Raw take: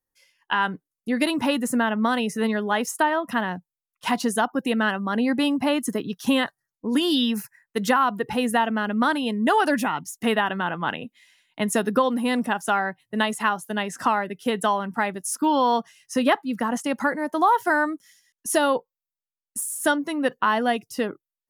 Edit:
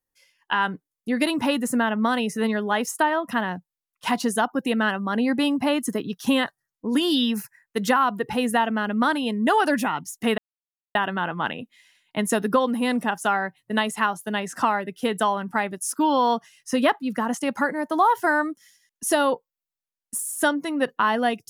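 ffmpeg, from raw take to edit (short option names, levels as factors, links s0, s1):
-filter_complex "[0:a]asplit=2[s0][s1];[s0]atrim=end=10.38,asetpts=PTS-STARTPTS,afade=t=out:st=10.376:d=0.004:c=hsin,apad=pad_dur=0.57[s2];[s1]atrim=start=10.38,asetpts=PTS-STARTPTS,afade=t=in:d=0.004:c=hsin[s3];[s2][s3]concat=n=2:v=0:a=1"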